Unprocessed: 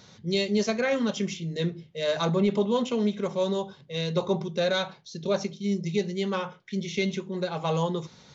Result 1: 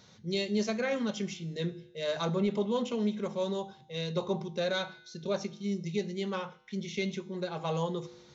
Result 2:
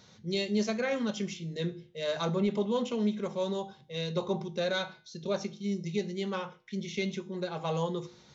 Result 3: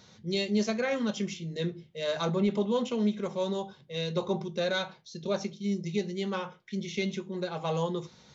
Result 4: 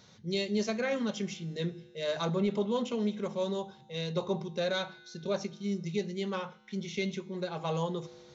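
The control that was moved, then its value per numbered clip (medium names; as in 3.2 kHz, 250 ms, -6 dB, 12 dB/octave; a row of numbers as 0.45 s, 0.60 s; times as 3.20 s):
feedback comb, decay: 1 s, 0.47 s, 0.15 s, 2.2 s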